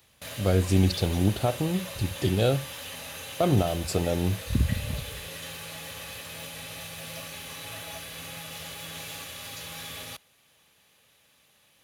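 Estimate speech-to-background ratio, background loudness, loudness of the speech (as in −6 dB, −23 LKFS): 11.0 dB, −37.5 LKFS, −26.5 LKFS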